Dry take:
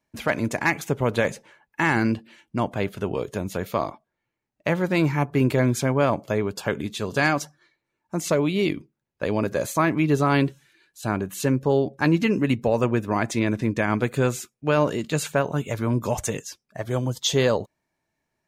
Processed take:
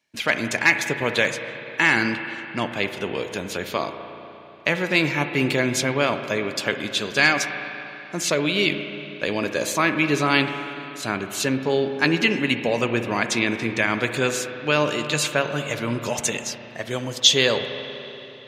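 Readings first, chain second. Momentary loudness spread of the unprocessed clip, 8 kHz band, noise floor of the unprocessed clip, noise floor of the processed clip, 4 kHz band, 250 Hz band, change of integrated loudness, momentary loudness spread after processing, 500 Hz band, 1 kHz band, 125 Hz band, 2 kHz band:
9 LU, +6.0 dB, -81 dBFS, -40 dBFS, +10.5 dB, -2.0 dB, +2.0 dB, 12 LU, -0.5 dB, +0.5 dB, -5.5 dB, +7.0 dB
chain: frequency weighting D; spring tank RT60 3.4 s, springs 34/60 ms, chirp 75 ms, DRR 7.5 dB; trim -1 dB

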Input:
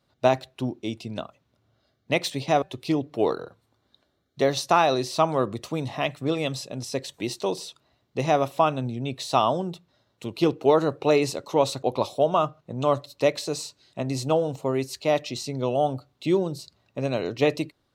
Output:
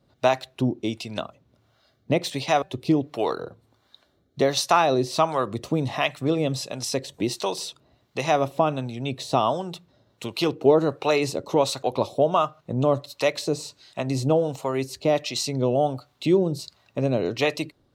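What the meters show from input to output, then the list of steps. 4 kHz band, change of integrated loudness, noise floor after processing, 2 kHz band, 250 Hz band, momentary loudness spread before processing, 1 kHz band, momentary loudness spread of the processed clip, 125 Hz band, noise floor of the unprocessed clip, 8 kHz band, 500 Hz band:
+2.5 dB, +1.0 dB, -66 dBFS, +1.5 dB, +2.0 dB, 12 LU, +0.5 dB, 11 LU, +2.0 dB, -72 dBFS, +3.0 dB, +0.5 dB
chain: in parallel at +2.5 dB: compression, threshold -30 dBFS, peak gain reduction 15.5 dB; on the sum: harmonic tremolo 1.4 Hz, depth 70%, crossover 660 Hz; trim +1.5 dB

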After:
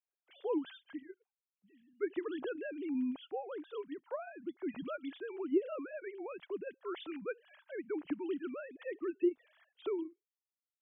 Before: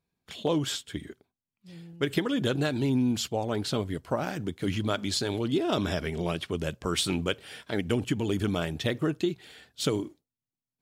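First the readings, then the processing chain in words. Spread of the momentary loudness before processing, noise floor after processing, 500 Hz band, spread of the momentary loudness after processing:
8 LU, under -85 dBFS, -7.0 dB, 12 LU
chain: formants replaced by sine waves; low-pass 2.1 kHz 6 dB/octave; peaking EQ 220 Hz -10.5 dB 0.41 oct; trim -8 dB

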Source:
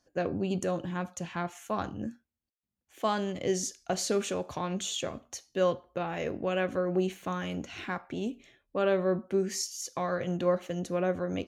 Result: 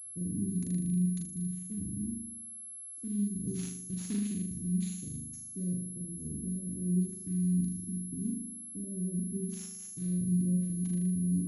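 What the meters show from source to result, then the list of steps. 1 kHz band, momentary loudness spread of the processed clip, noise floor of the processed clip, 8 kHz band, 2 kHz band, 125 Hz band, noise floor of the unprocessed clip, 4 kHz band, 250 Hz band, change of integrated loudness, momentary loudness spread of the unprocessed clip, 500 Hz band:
under -35 dB, 10 LU, -46 dBFS, +0.5 dB, under -20 dB, +5.0 dB, under -85 dBFS, under -15 dB, +2.5 dB, -2.0 dB, 8 LU, -21.0 dB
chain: inverse Chebyshev band-stop 660–3000 Hz, stop band 60 dB; flutter echo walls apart 6.7 m, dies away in 0.91 s; class-D stage that switches slowly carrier 11 kHz

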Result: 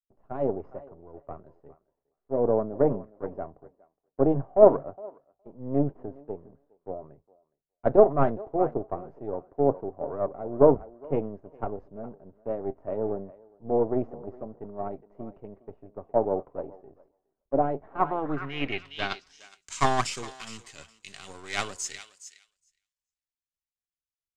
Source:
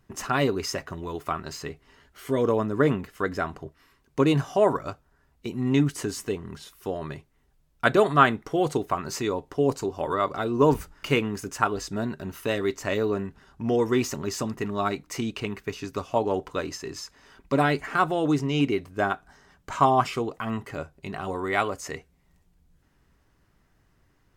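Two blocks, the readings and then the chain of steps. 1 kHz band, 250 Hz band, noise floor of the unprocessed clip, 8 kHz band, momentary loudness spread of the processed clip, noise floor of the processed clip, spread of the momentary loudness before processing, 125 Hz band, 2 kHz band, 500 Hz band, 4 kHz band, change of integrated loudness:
-4.5 dB, -5.0 dB, -66 dBFS, no reading, 23 LU, under -85 dBFS, 15 LU, -6.0 dB, -9.5 dB, +0.5 dB, -6.0 dB, -0.5 dB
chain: partial rectifier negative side -12 dB; thinning echo 415 ms, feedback 24%, high-pass 390 Hz, level -11.5 dB; low-pass sweep 640 Hz -> 7.6 kHz, 17.81–19.50 s; three bands expanded up and down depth 100%; trim -5 dB

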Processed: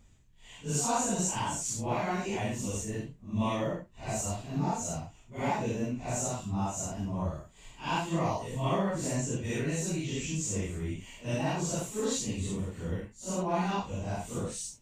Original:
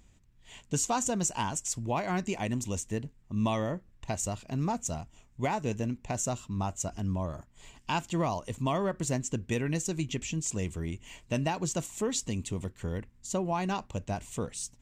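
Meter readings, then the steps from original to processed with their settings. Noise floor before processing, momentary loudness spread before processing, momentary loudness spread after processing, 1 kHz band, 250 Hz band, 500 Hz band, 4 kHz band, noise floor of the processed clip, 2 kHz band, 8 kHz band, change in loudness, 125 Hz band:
-61 dBFS, 8 LU, 8 LU, 0.0 dB, 0.0 dB, 0.0 dB, 0.0 dB, -57 dBFS, 0.0 dB, 0.0 dB, 0.0 dB, 0.0 dB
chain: phase randomisation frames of 200 ms

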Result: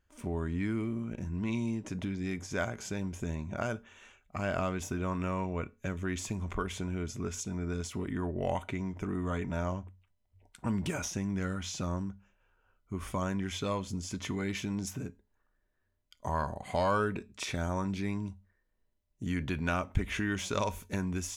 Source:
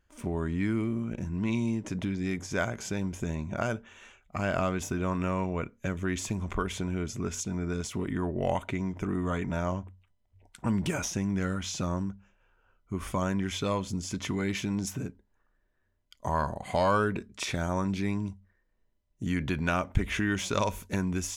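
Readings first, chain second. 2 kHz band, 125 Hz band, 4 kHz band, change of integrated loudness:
-3.5 dB, -3.0 dB, -3.5 dB, -3.5 dB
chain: feedback comb 85 Hz, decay 0.27 s, harmonics odd, mix 40%

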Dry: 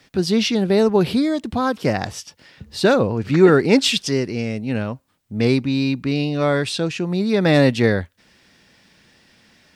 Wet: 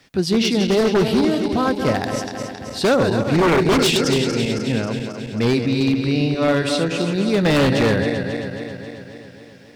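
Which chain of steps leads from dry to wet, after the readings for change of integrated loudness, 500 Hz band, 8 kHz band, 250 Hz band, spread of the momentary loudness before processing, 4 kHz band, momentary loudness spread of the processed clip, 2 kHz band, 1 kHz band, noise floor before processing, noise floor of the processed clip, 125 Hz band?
0.0 dB, 0.0 dB, +2.0 dB, +0.5 dB, 11 LU, +1.0 dB, 13 LU, +1.0 dB, +2.0 dB, -62 dBFS, -42 dBFS, +0.5 dB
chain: backward echo that repeats 135 ms, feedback 78%, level -7.5 dB; wavefolder -10 dBFS

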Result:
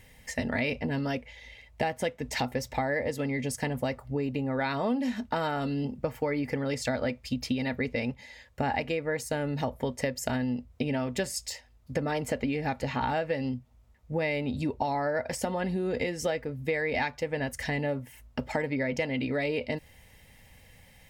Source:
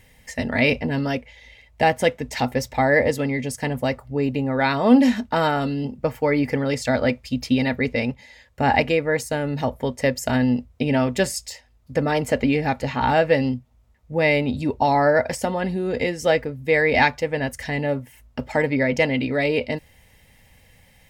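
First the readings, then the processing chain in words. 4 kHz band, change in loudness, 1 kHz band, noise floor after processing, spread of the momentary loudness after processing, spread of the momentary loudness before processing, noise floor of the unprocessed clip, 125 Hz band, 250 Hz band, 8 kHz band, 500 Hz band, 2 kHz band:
-8.0 dB, -9.5 dB, -10.0 dB, -57 dBFS, 6 LU, 9 LU, -56 dBFS, -7.5 dB, -9.0 dB, -5.0 dB, -9.5 dB, -10.0 dB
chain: compression 6:1, threshold -25 dBFS, peak gain reduction 15.5 dB; trim -1.5 dB

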